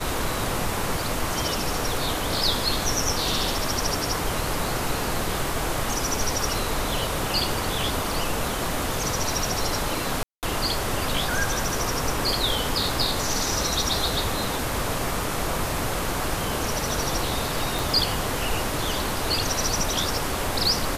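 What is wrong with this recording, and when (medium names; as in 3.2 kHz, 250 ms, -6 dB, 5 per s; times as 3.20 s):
10.23–10.43 s: dropout 198 ms
17.79 s: pop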